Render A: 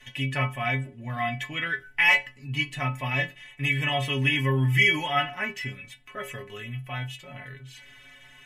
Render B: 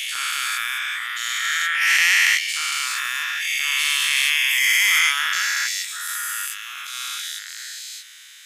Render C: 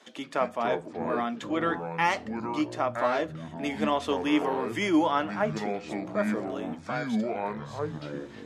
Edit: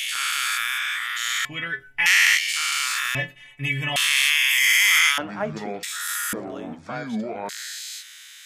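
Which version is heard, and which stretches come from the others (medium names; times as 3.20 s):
B
1.45–2.06 s: from A
3.15–3.96 s: from A
5.18–5.83 s: from C
6.33–7.49 s: from C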